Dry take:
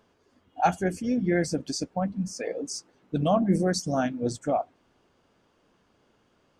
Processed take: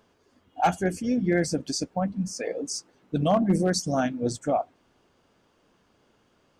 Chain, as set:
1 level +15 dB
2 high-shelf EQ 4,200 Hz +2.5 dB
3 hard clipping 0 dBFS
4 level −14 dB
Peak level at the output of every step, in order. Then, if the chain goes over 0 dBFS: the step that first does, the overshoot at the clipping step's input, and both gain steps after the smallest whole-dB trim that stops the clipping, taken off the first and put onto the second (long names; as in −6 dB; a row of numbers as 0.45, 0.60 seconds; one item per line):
+5.0, +5.0, 0.0, −14.0 dBFS
step 1, 5.0 dB
step 1 +10 dB, step 4 −9 dB